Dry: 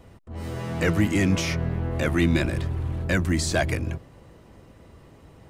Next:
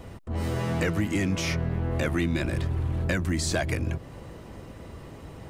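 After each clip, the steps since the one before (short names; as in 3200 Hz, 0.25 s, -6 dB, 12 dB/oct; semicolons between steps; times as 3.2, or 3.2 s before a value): compressor 4:1, threshold -32 dBFS, peak gain reduction 13.5 dB; gain +7 dB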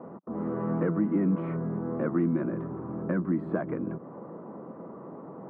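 elliptic band-pass 180–1200 Hz, stop band 60 dB; dynamic EQ 720 Hz, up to -8 dB, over -47 dBFS, Q 1.2; gain +4 dB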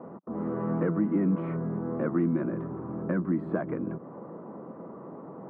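nothing audible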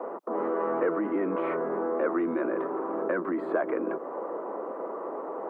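HPF 380 Hz 24 dB/oct; in parallel at -2 dB: negative-ratio compressor -40 dBFS, ratio -1; on the sum: gain +4.5 dB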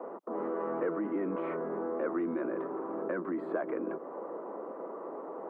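low shelf 200 Hz +10.5 dB; gain -7.5 dB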